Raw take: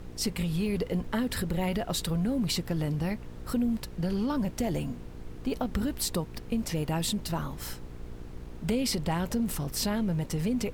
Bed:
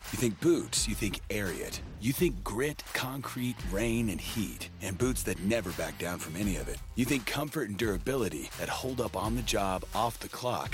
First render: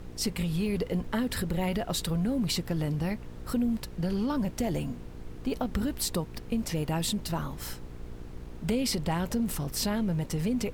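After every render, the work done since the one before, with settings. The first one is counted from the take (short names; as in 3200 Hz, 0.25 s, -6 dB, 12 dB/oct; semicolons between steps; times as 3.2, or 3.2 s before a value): nothing audible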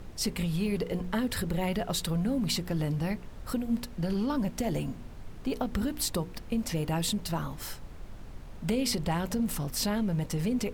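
de-hum 60 Hz, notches 8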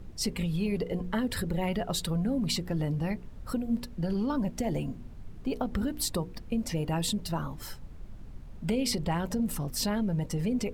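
denoiser 8 dB, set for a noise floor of -44 dBFS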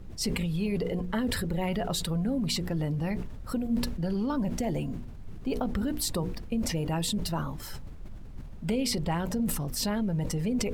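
sustainer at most 43 dB/s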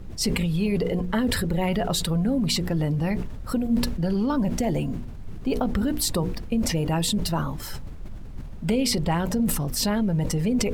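gain +5.5 dB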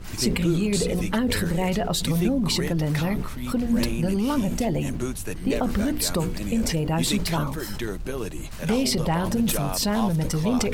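add bed -0.5 dB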